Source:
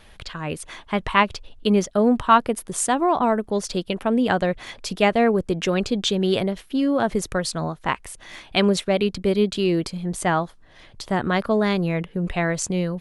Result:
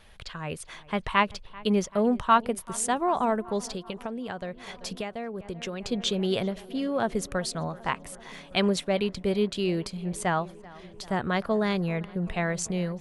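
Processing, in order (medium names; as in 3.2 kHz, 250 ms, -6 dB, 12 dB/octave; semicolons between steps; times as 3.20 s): peaking EQ 300 Hz -6.5 dB 0.32 oct; filtered feedback delay 387 ms, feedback 77%, low-pass 2.9 kHz, level -21 dB; 3.62–5.85 s: compression 12:1, threshold -26 dBFS, peak gain reduction 13.5 dB; trim -5 dB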